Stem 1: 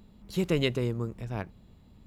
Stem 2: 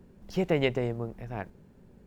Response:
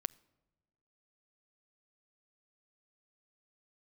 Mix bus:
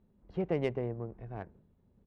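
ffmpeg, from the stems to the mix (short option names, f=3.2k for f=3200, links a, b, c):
-filter_complex "[0:a]volume=-14.5dB[a];[1:a]highpass=43,agate=range=-33dB:threshold=-47dB:ratio=3:detection=peak,equalizer=f=5.1k:w=0.52:g=-10,adelay=2.8,volume=-5dB,asplit=2[b][c];[c]apad=whole_len=91089[d];[a][d]sidechaincompress=threshold=-44dB:ratio=8:attack=16:release=107[e];[e][b]amix=inputs=2:normalize=0,lowpass=5.6k,adynamicsmooth=sensitivity=4.5:basefreq=2.4k"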